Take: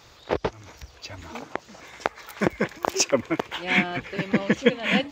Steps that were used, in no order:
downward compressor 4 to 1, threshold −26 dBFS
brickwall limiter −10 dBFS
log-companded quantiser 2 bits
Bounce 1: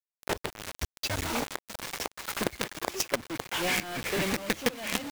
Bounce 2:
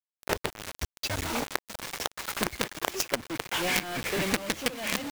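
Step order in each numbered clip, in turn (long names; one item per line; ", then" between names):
log-companded quantiser, then downward compressor, then brickwall limiter
brickwall limiter, then log-companded quantiser, then downward compressor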